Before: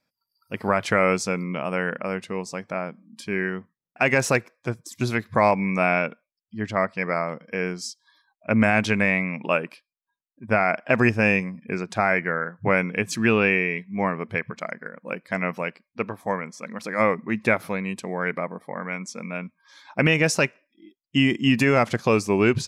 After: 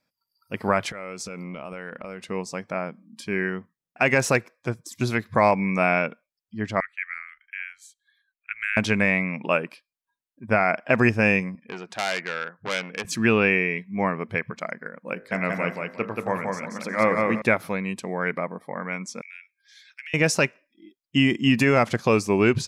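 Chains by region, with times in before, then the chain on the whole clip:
0.89–2.29 HPF 160 Hz 6 dB/oct + compressor 20:1, threshold -29 dBFS + core saturation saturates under 350 Hz
6.8–8.77 inverse Chebyshev band-stop 120–560 Hz, stop band 60 dB + high shelf 4800 Hz -7 dB + fixed phaser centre 2200 Hz, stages 4
11.55–13.05 HPF 510 Hz 6 dB/oct + high shelf 5300 Hz -9.5 dB + core saturation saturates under 3900 Hz
15.13–17.42 de-hum 51.11 Hz, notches 40 + feedback echo 0.18 s, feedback 25%, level -3 dB
19.21–20.14 steep high-pass 1700 Hz 48 dB/oct + compressor 4:1, threshold -38 dBFS
whole clip: dry

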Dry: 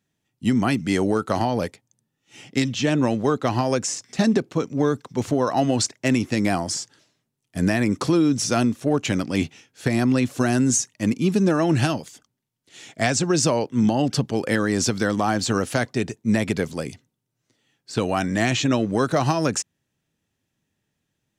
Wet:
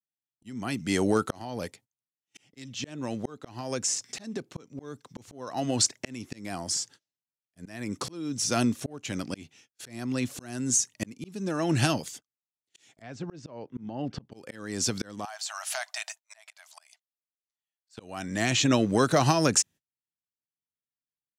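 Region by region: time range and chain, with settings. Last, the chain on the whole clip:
13.02–14.32 LPF 3800 Hz + high shelf 2400 Hz -11 dB
15.25–17.98 brick-wall FIR high-pass 600 Hz + compressor 3:1, threshold -30 dBFS
whole clip: gate -46 dBFS, range -31 dB; high shelf 3200 Hz +7 dB; auto swell 0.758 s; gain -2 dB

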